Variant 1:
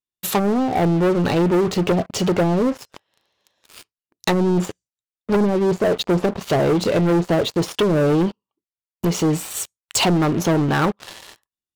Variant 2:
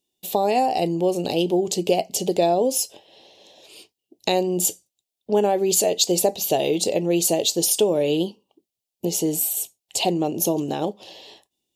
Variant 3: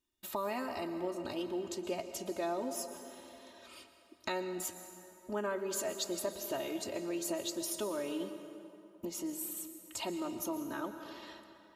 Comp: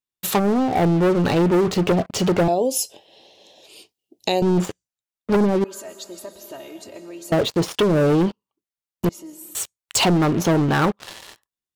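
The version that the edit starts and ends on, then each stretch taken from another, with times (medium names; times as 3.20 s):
1
2.48–4.42 s: from 2
5.64–7.32 s: from 3
9.09–9.55 s: from 3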